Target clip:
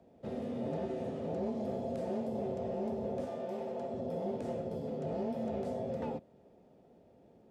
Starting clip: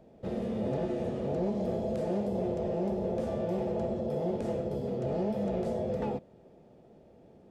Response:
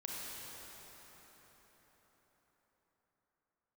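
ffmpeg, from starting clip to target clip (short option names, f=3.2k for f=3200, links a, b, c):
-filter_complex "[0:a]asettb=1/sr,asplit=3[a][b][c];[a]atrim=end=3.254[d];[b]atrim=start=3.25:end=3.93,asetpts=PTS-STARTPTS,afade=t=in:d=0.004:c=qsin,afade=t=out:st=0.676:d=0.004:c=qsin,highpass=f=310:p=1[e];[c]atrim=start=3.926[f];[d][e]acrossfade=d=0.004:c1=hsin:c2=qsin[g];[g][f]acrossfade=d=0.004:c1=qsin:c2=hsin,afreqshift=23,volume=-5dB"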